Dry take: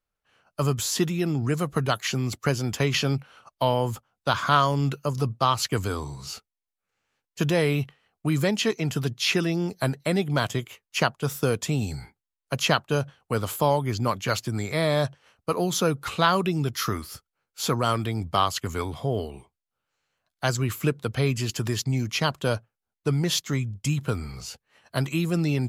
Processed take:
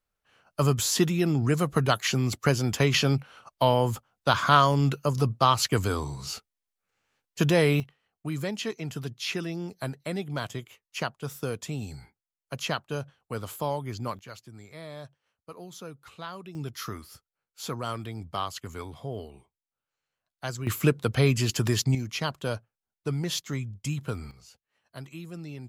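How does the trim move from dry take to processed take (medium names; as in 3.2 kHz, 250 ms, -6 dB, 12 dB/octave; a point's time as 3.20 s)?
+1 dB
from 7.80 s -8 dB
from 14.19 s -18.5 dB
from 16.55 s -9 dB
from 20.67 s +2 dB
from 21.95 s -5.5 dB
from 24.31 s -15.5 dB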